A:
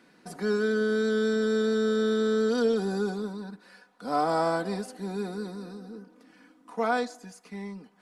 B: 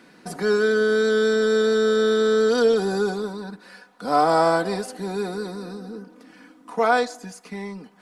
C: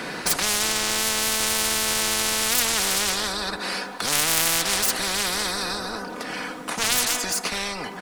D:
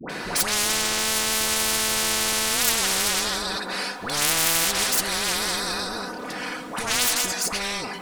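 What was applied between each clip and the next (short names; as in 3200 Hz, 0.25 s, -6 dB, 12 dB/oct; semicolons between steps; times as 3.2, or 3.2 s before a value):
dynamic EQ 220 Hz, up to -7 dB, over -43 dBFS, Q 2.1; gain +8 dB
self-modulated delay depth 0.33 ms; outdoor echo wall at 34 m, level -23 dB; spectral compressor 10:1; gain +5 dB
dispersion highs, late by 96 ms, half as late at 900 Hz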